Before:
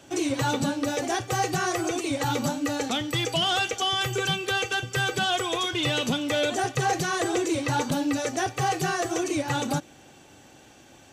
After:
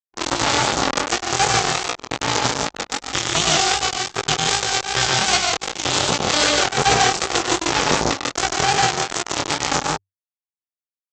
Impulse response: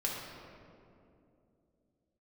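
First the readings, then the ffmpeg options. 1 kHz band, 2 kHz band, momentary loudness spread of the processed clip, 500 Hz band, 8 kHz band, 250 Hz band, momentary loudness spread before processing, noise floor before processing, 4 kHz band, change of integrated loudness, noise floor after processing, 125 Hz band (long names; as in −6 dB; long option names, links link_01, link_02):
+7.5 dB, +7.0 dB, 7 LU, +3.5 dB, +12.0 dB, −0.5 dB, 3 LU, −52 dBFS, +8.5 dB, +7.0 dB, below −85 dBFS, +2.0 dB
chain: -af "aeval=exprs='val(0)+0.0112*(sin(2*PI*60*n/s)+sin(2*PI*2*60*n/s)/2+sin(2*PI*3*60*n/s)/3+sin(2*PI*4*60*n/s)/4+sin(2*PI*5*60*n/s)/5)':channel_layout=same,aresample=16000,acrusher=bits=2:mix=0:aa=0.5,aresample=44100,equalizer=frequency=100:width_type=o:width=0.33:gain=-3,equalizer=frequency=400:width_type=o:width=0.33:gain=4,equalizer=frequency=800:width_type=o:width=0.33:gain=6,equalizer=frequency=1250:width_type=o:width=0.33:gain=4,aecho=1:1:99.13|142.9|174.9:0.398|0.562|0.355,areverse,acompressor=mode=upward:threshold=-38dB:ratio=2.5,areverse,flanger=delay=17:depth=7.5:speed=2.6,highpass=54,anlmdn=0.00631,alimiter=level_in=23dB:limit=-1dB:release=50:level=0:latency=1,adynamicequalizer=threshold=0.0398:dfrequency=3500:dqfactor=0.7:tfrequency=3500:tqfactor=0.7:attack=5:release=100:ratio=0.375:range=2.5:mode=boostabove:tftype=highshelf,volume=-3dB"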